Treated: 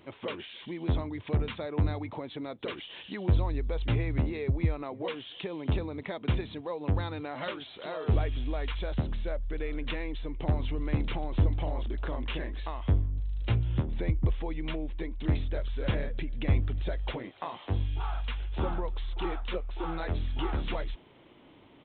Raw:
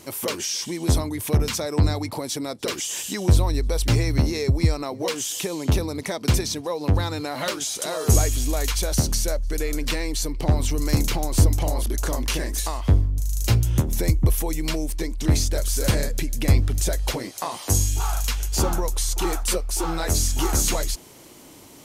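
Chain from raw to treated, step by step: downsampling 8000 Hz; gain -8 dB

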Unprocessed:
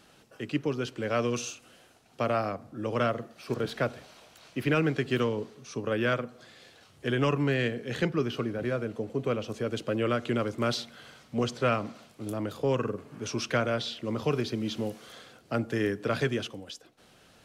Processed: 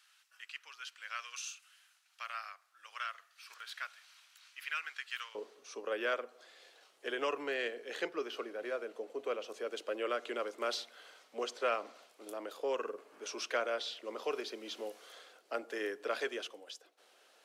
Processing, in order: HPF 1300 Hz 24 dB/oct, from 5.35 s 400 Hz; gain -5.5 dB

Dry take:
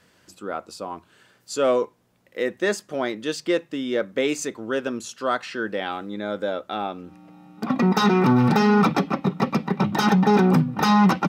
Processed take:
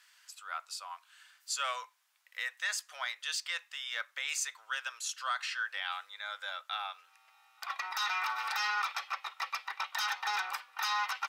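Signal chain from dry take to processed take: Bessel high-pass 1600 Hz, order 6; limiter -23.5 dBFS, peak gain reduction 9 dB

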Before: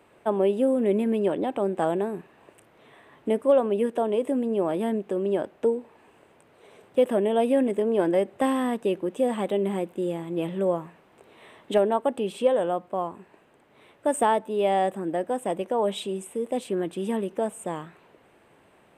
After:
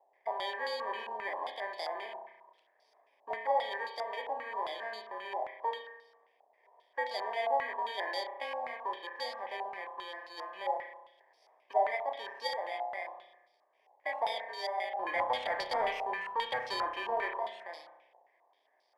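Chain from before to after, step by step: FFT order left unsorted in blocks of 32 samples; ladder high-pass 570 Hz, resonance 45%; 14.99–17.37 sample leveller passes 3; spring tank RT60 1 s, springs 32 ms, chirp 70 ms, DRR 3.5 dB; stepped low-pass 7.5 Hz 810–4400 Hz; gain -7 dB

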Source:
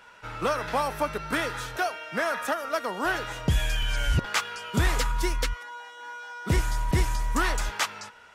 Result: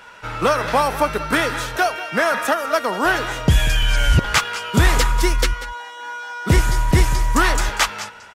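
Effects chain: echo 0.19 s -15.5 dB; gain +9 dB

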